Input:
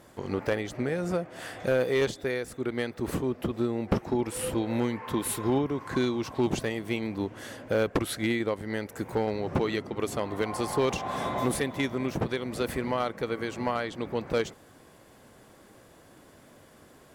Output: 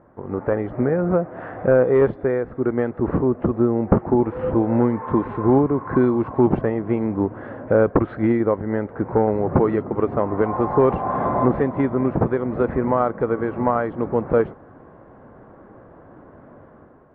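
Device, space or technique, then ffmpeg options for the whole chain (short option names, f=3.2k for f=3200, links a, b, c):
action camera in a waterproof case: -af "lowpass=f=1.4k:w=0.5412,lowpass=f=1.4k:w=1.3066,dynaudnorm=f=140:g=7:m=8dB,volume=2dB" -ar 22050 -c:a aac -b:a 48k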